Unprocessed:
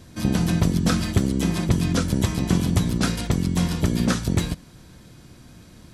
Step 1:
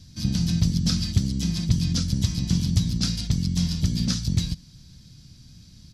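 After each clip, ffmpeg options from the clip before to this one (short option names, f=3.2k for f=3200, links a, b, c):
-af "firequalizer=gain_entry='entry(150,0);entry(380,-18);entry(1000,-17);entry(4900,7);entry(8300,-8)':delay=0.05:min_phase=1"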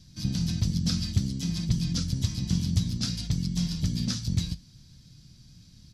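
-af "flanger=delay=5.3:depth=5.3:regen=-63:speed=0.56:shape=triangular"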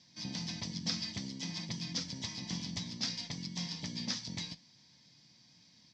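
-af "highpass=370,equalizer=f=380:t=q:w=4:g=-6,equalizer=f=910:t=q:w=4:g=7,equalizer=f=1.4k:t=q:w=4:g=-9,equalizer=f=2k:t=q:w=4:g=6,equalizer=f=2.8k:t=q:w=4:g=-3,equalizer=f=4.1k:t=q:w=4:g=-4,lowpass=f=5.6k:w=0.5412,lowpass=f=5.6k:w=1.3066"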